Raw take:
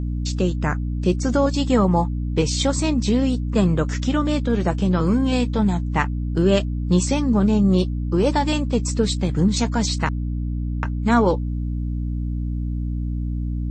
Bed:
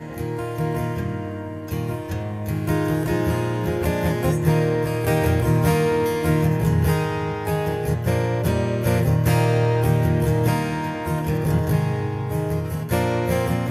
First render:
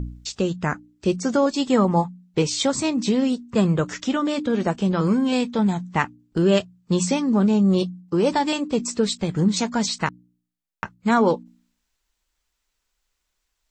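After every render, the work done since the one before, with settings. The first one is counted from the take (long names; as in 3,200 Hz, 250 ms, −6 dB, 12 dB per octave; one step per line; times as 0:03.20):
hum removal 60 Hz, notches 5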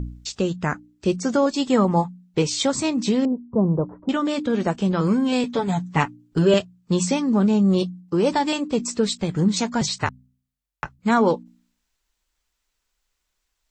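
0:03.25–0:04.09: elliptic low-pass filter 980 Hz, stop band 80 dB
0:05.43–0:06.54: comb filter 7.1 ms, depth 90%
0:09.81–0:10.99: frequency shifter −47 Hz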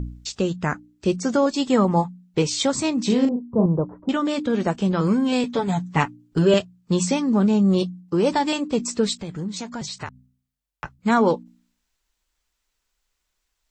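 0:03.06–0:03.66: double-tracking delay 37 ms −4.5 dB
0:09.15–0:10.84: downward compressor 2 to 1, threshold −34 dBFS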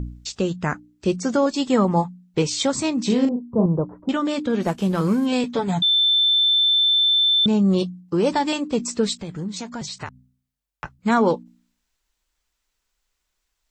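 0:04.62–0:05.26: variable-slope delta modulation 64 kbit/s
0:05.82–0:07.46: beep over 3,540 Hz −14.5 dBFS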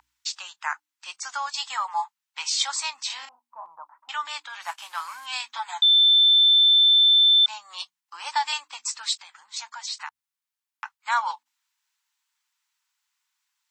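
elliptic high-pass filter 880 Hz, stop band 50 dB
dynamic equaliser 4,700 Hz, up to +4 dB, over −37 dBFS, Q 1.9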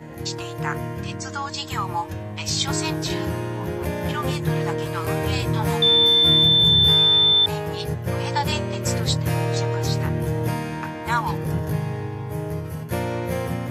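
mix in bed −4.5 dB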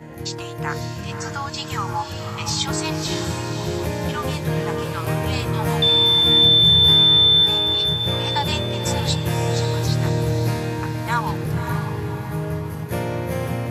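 feedback delay with all-pass diffusion 564 ms, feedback 47%, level −6.5 dB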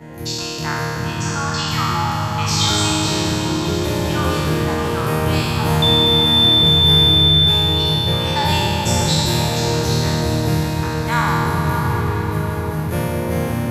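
peak hold with a decay on every bin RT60 2.63 s
echo whose low-pass opens from repeat to repeat 201 ms, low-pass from 400 Hz, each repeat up 1 octave, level −3 dB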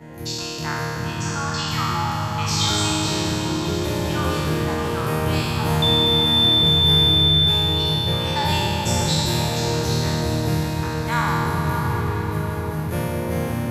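level −3.5 dB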